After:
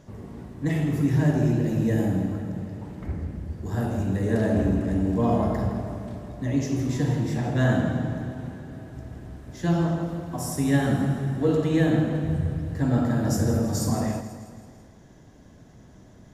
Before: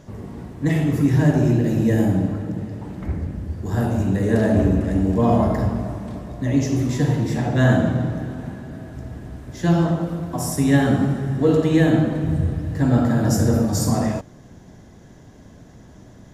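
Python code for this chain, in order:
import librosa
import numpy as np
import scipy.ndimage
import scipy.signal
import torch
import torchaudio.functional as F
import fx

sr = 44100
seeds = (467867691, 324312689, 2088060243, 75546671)

y = fx.echo_feedback(x, sr, ms=163, feedback_pct=58, wet_db=-12.0)
y = F.gain(torch.from_numpy(y), -5.5).numpy()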